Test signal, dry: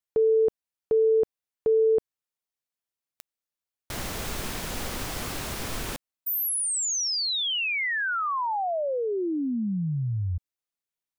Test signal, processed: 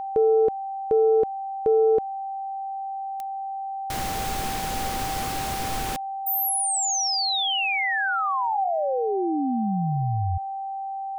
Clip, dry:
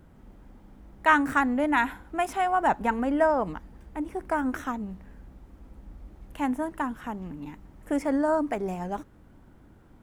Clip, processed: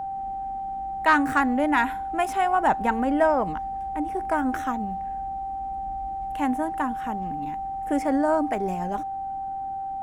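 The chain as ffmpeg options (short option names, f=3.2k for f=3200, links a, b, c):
-af "acontrast=71,aeval=exprs='val(0)+0.0631*sin(2*PI*780*n/s)':c=same,volume=-4.5dB"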